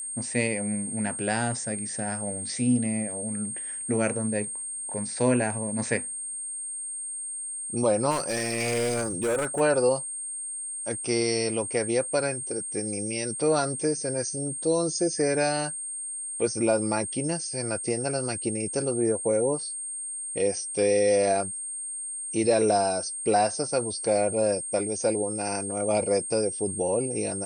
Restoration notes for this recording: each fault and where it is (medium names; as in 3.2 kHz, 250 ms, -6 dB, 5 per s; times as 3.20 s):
whine 8.6 kHz -32 dBFS
8.10–9.61 s: clipped -22.5 dBFS